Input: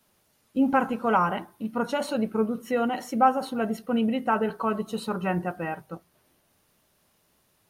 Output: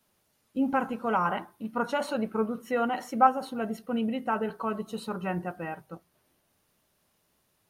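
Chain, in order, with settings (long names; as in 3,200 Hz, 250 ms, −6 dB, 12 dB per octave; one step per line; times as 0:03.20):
0:01.25–0:03.27: dynamic equaliser 1,200 Hz, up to +6 dB, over −42 dBFS, Q 0.7
level −4.5 dB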